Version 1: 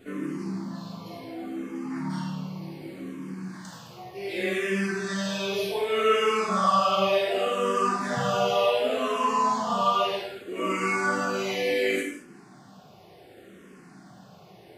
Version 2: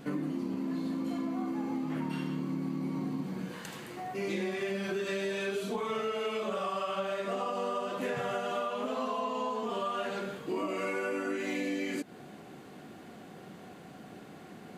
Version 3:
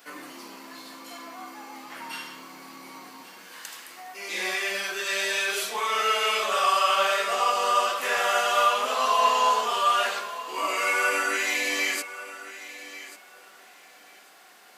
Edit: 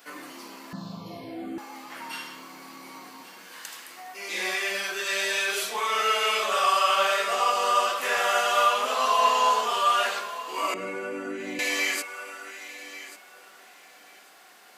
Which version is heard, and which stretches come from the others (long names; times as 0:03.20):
3
0:00.73–0:01.58: punch in from 1
0:10.74–0:11.59: punch in from 2